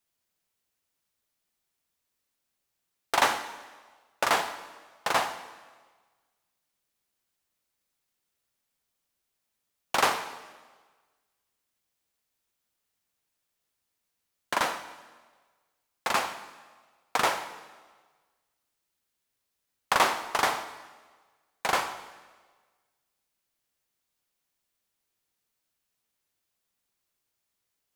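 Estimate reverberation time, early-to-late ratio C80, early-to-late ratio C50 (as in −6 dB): 1.4 s, 13.0 dB, 11.5 dB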